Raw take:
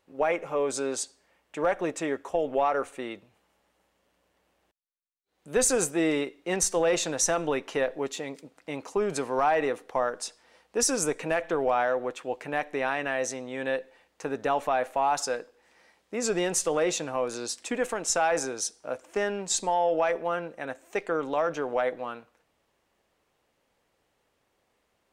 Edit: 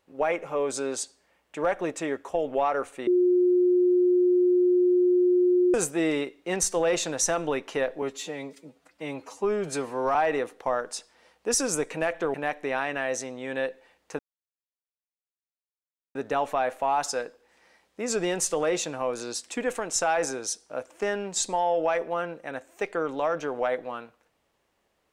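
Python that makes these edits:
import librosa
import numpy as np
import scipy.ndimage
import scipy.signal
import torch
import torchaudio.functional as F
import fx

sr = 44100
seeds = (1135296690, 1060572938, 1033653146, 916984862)

y = fx.edit(x, sr, fx.bleep(start_s=3.07, length_s=2.67, hz=359.0, db=-17.5),
    fx.stretch_span(start_s=8.02, length_s=1.42, factor=1.5),
    fx.cut(start_s=11.63, length_s=0.81),
    fx.insert_silence(at_s=14.29, length_s=1.96), tone=tone)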